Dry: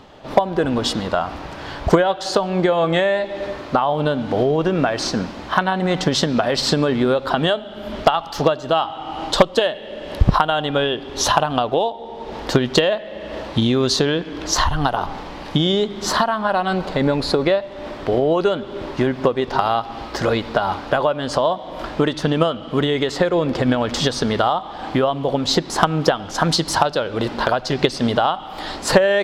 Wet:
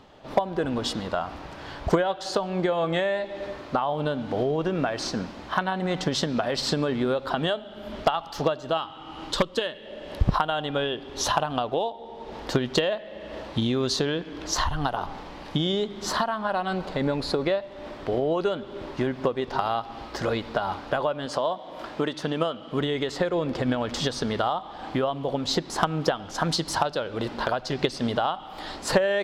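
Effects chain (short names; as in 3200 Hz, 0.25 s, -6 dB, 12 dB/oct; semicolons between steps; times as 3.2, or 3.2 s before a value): 8.77–9.86 bell 710 Hz -11 dB 0.49 oct; 21.26–22.72 HPF 190 Hz 6 dB/oct; gain -7.5 dB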